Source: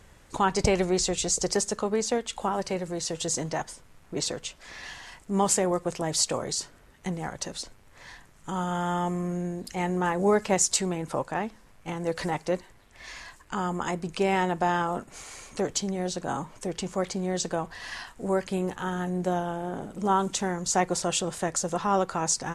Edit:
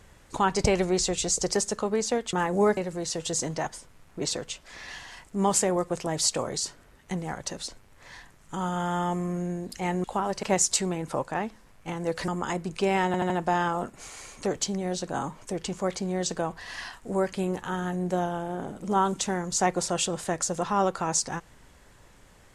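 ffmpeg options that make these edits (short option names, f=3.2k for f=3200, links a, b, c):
-filter_complex "[0:a]asplit=9[a][b][c][d][e][f][g][h][i];[a]atrim=end=2.332[j];[b]atrim=start=9.988:end=10.432[k];[c]atrim=start=2.718:end=9.992[l];[d]atrim=start=2.328:end=2.722[m];[e]atrim=start=10.428:end=12.282[n];[f]atrim=start=13.658:end=14.522[o];[g]atrim=start=14.438:end=14.522[p];[h]atrim=start=14.438:end=14.522[q];[i]atrim=start=14.438[r];[j][k]acrossfade=d=0.004:c1=hsin:c2=hsin[s];[s][l]acrossfade=d=0.004:c1=hsin:c2=hsin[t];[t][m]acrossfade=d=0.004:c1=hsin:c2=hsin[u];[u][n]acrossfade=d=0.004:c1=hsin:c2=hsin[v];[v][o]acrossfade=d=0.004:c1=hsin:c2=hsin[w];[w][p]acrossfade=d=0.004:c1=hsin:c2=hsin[x];[x][q]acrossfade=d=0.004:c1=hsin:c2=hsin[y];[y][r]acrossfade=d=0.004:c1=hsin:c2=hsin"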